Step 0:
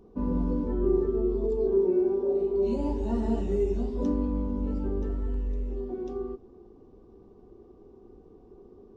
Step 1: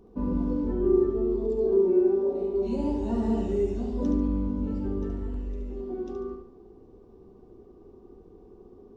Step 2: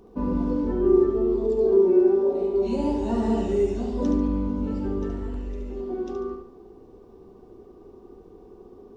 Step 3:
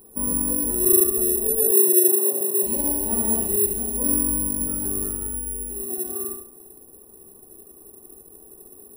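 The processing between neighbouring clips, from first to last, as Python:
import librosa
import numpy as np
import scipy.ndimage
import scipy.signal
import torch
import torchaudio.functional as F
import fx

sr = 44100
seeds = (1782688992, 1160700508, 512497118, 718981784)

y1 = fx.echo_feedback(x, sr, ms=72, feedback_pct=39, wet_db=-6.0)
y2 = fx.low_shelf(y1, sr, hz=400.0, db=-7.0)
y2 = y2 * librosa.db_to_amplitude(7.5)
y3 = (np.kron(y2[::4], np.eye(4)[0]) * 4)[:len(y2)]
y3 = y3 * librosa.db_to_amplitude(-5.0)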